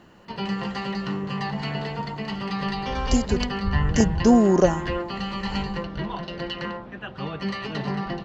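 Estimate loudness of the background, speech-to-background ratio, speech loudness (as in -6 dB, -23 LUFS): -29.0 LUFS, 7.5 dB, -21.5 LUFS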